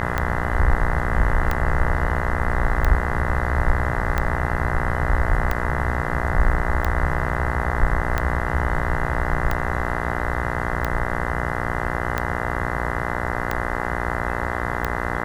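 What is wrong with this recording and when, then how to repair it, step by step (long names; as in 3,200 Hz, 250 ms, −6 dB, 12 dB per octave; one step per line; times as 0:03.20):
mains buzz 60 Hz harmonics 34 −26 dBFS
scratch tick 45 rpm −9 dBFS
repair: click removal
hum removal 60 Hz, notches 34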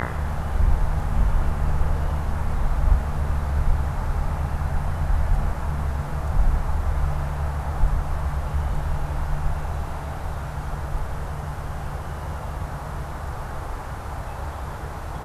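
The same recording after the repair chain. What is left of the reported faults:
none of them is left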